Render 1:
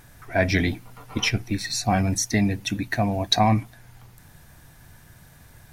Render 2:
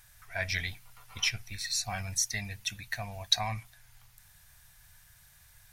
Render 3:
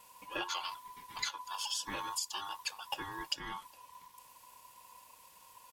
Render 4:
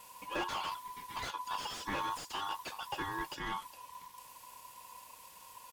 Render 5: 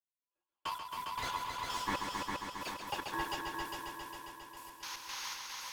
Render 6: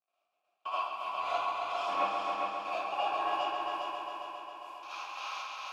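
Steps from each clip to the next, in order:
amplifier tone stack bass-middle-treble 10-0-10; trim -2.5 dB
comb 3.3 ms, depth 88%; compression 6:1, threshold -31 dBFS, peak gain reduction 13.5 dB; ring modulator 1 kHz
slew-rate limiter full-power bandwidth 19 Hz; trim +4.5 dB
painted sound noise, 4.77–5.34 s, 780–6800 Hz -45 dBFS; trance gate ".....x.x.xx..xx" 115 bpm -60 dB; multi-head delay 135 ms, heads all three, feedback 65%, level -7 dB; trim +1 dB
crackle 110 per s -61 dBFS; vowel filter a; reverberation RT60 0.60 s, pre-delay 35 ms, DRR -9.5 dB; trim +8.5 dB

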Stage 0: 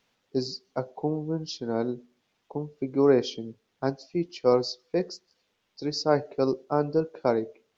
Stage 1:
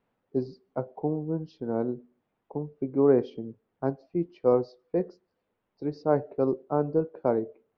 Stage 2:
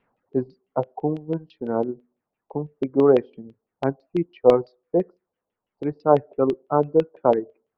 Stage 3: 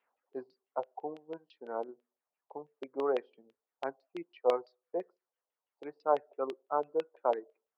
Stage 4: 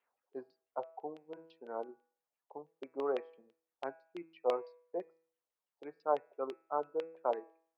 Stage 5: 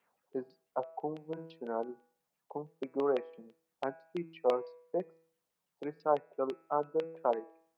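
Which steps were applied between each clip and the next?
Bessel low-pass 1 kHz, order 2
reverb removal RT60 1.7 s; LFO low-pass saw down 6 Hz 620–3100 Hz; trim +4.5 dB
high-pass 630 Hz 12 dB/octave; trim -7.5 dB
de-hum 163.2 Hz, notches 16; trim -3.5 dB
peaking EQ 170 Hz +13.5 dB 0.96 oct; in parallel at +2 dB: compression, threshold -42 dBFS, peak gain reduction 17.5 dB

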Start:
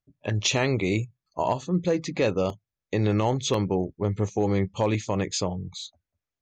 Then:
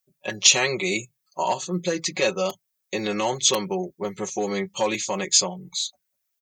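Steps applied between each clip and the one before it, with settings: RIAA curve recording; comb 5.4 ms, depth 92%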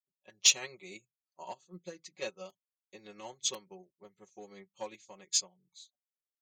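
in parallel at -8.5 dB: overload inside the chain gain 10 dB; on the sum: upward expansion 2.5:1, over -28 dBFS; trim -8.5 dB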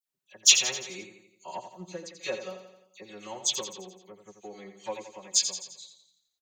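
phase dispersion lows, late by 70 ms, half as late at 2.8 kHz; on a send: feedback delay 86 ms, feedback 53%, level -9 dB; on the sum: trim +5.5 dB

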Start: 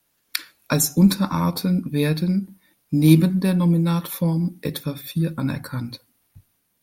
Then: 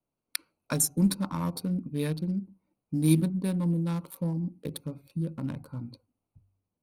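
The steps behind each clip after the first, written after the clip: local Wiener filter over 25 samples; peaking EQ 9.3 kHz +10 dB 0.38 oct; de-hum 48.48 Hz, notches 2; trim -9 dB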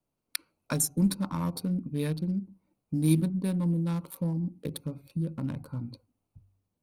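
bass shelf 150 Hz +3.5 dB; in parallel at -1 dB: compression, threshold -36 dBFS, peak gain reduction 19 dB; on the sum: trim -3.5 dB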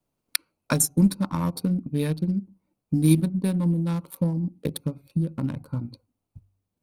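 transient shaper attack +4 dB, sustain -5 dB; trim +4 dB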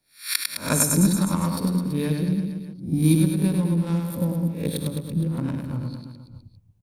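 reverse spectral sustain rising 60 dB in 0.34 s; on a send: reverse bouncing-ball echo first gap 100 ms, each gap 1.1×, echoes 5; on the sum: trim -1 dB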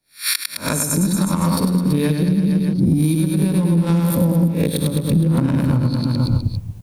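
recorder AGC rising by 58 dB/s; trim -2 dB

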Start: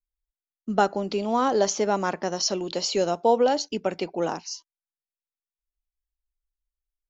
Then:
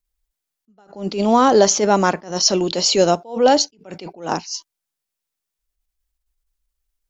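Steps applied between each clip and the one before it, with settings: tone controls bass +2 dB, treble +3 dB; in parallel at -0.5 dB: peak limiter -15.5 dBFS, peak gain reduction 7.5 dB; on the sum: attacks held to a fixed rise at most 150 dB/s; trim +4.5 dB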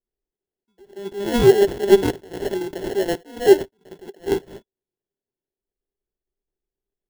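high-order bell 1.1 kHz +11 dB 1.3 oct; sample-rate reducer 1.2 kHz, jitter 0%; small resonant body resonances 390/3400 Hz, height 15 dB, ringing for 60 ms; trim -15 dB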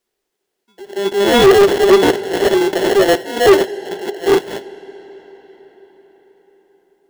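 on a send at -22.5 dB: reverberation RT60 5.4 s, pre-delay 15 ms; on the sum: overdrive pedal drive 26 dB, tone 7.7 kHz, clips at -1 dBFS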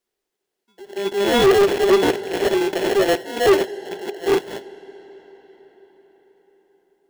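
rattle on loud lows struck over -29 dBFS, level -20 dBFS; trim -5.5 dB

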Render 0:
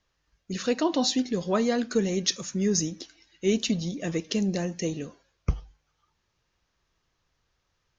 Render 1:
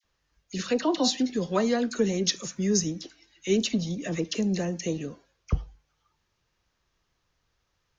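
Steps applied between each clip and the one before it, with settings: phase dispersion lows, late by 42 ms, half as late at 1.4 kHz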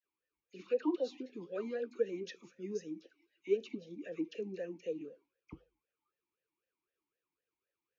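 talking filter e-u 3.9 Hz; trim -3 dB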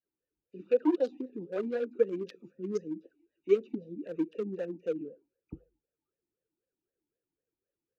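local Wiener filter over 41 samples; trim +7 dB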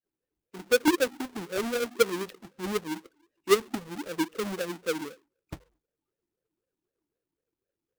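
square wave that keeps the level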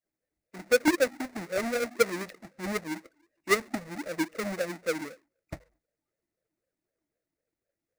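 graphic EQ with 31 bands 400 Hz -7 dB, 630 Hz +10 dB, 1 kHz -5 dB, 2 kHz +8 dB, 3.15 kHz -9 dB, 16 kHz -10 dB

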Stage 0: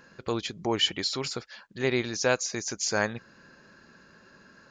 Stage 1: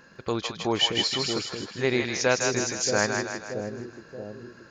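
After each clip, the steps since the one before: two-band feedback delay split 570 Hz, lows 628 ms, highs 158 ms, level -4 dB; trim +1.5 dB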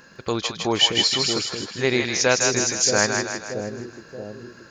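treble shelf 3.7 kHz +6.5 dB; trim +3 dB

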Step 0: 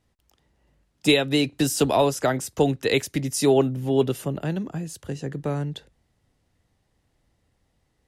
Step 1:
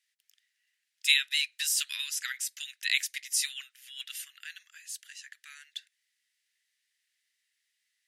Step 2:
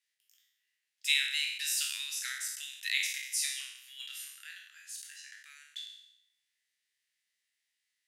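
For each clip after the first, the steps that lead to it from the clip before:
steep high-pass 1.7 kHz 48 dB/octave
spectral sustain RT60 0.83 s; trim -6.5 dB

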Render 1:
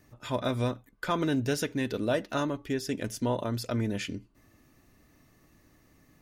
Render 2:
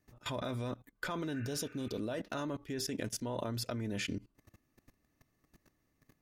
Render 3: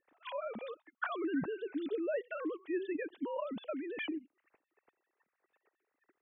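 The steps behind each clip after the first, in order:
level held to a coarse grid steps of 20 dB; spectral replace 1.36–1.95 s, 1.2–2.8 kHz both; trim +3 dB
formants replaced by sine waves

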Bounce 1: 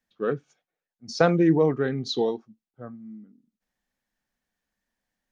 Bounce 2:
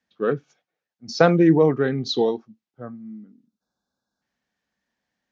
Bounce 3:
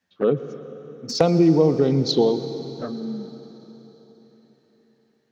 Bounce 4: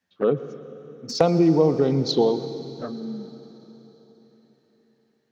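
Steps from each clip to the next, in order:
low-pass 6.4 kHz 24 dB/octave; spectral selection erased 3.47–4.22 s, 1.7–3.4 kHz; high-pass 82 Hz; trim +4 dB
compression 3:1, threshold -21 dBFS, peak gain reduction 9 dB; touch-sensitive flanger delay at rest 11.5 ms, full sweep at -22 dBFS; on a send at -11 dB: reverberation RT60 4.1 s, pre-delay 112 ms; on the sum: trim +7 dB
dynamic bell 930 Hz, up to +4 dB, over -32 dBFS, Q 0.83; trim -2.5 dB

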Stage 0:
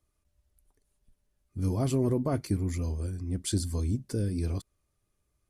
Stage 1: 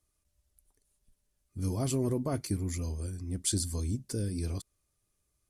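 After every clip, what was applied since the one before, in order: peaking EQ 8.8 kHz +8.5 dB 2.2 oct; trim -3.5 dB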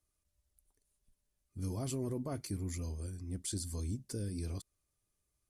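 peak limiter -24 dBFS, peak gain reduction 6.5 dB; trim -5 dB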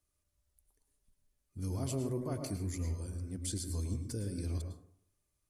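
plate-style reverb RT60 0.61 s, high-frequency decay 0.35×, pre-delay 95 ms, DRR 5 dB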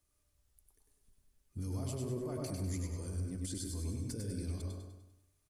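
peak limiter -36 dBFS, peak gain reduction 11 dB; on a send: feedback delay 99 ms, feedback 46%, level -5 dB; on the sum: trim +3 dB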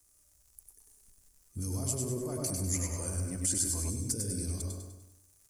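crackle 150 per s -61 dBFS; resonant high shelf 4.9 kHz +10.5 dB, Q 1.5; time-frequency box 2.75–3.90 s, 510–3100 Hz +8 dB; trim +3 dB

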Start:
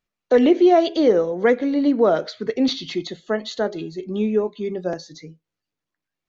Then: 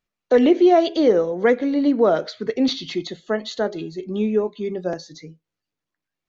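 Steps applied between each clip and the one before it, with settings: no audible change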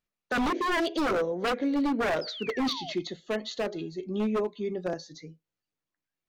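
painted sound fall, 2.21–2.93 s, 590–5300 Hz -35 dBFS; wavefolder -16 dBFS; trim -5.5 dB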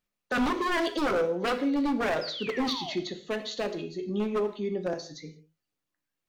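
in parallel at -3 dB: peak limiter -31.5 dBFS, peak gain reduction 10 dB; on the sum: gated-style reverb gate 210 ms falling, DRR 8 dB; trim -2.5 dB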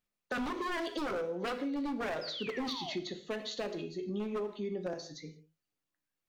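compression, threshold -29 dBFS, peak gain reduction 7 dB; trim -3.5 dB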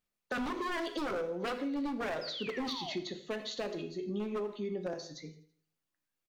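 feedback delay 82 ms, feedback 56%, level -21 dB

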